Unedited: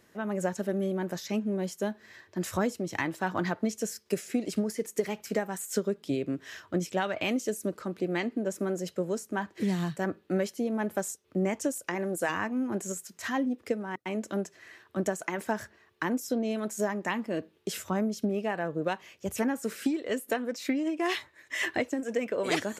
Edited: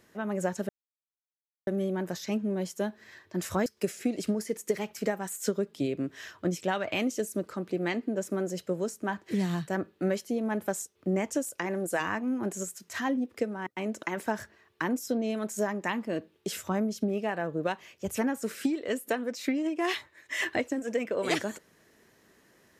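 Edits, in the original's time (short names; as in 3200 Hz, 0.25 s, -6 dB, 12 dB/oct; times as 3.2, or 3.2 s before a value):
0.69 insert silence 0.98 s
2.68–3.95 cut
14.32–15.24 cut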